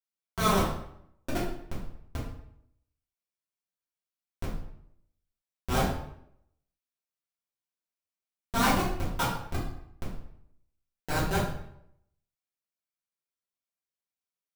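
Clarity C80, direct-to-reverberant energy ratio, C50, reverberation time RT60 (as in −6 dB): 7.0 dB, −9.0 dB, 3.5 dB, 0.70 s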